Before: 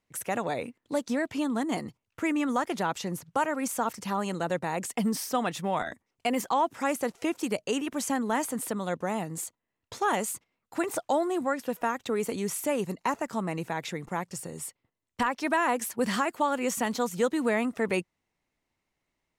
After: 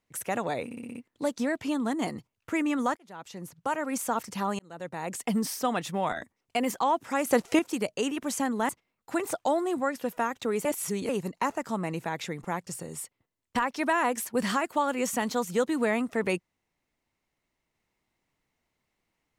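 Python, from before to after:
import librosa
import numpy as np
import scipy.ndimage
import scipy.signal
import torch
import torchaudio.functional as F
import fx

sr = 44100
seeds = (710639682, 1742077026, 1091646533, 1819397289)

y = fx.edit(x, sr, fx.stutter(start_s=0.65, slice_s=0.06, count=6),
    fx.fade_in_span(start_s=2.67, length_s=1.01),
    fx.fade_in_span(start_s=4.29, length_s=0.67),
    fx.clip_gain(start_s=6.97, length_s=0.32, db=7.0),
    fx.cut(start_s=8.39, length_s=1.94),
    fx.reverse_span(start_s=12.29, length_s=0.44), tone=tone)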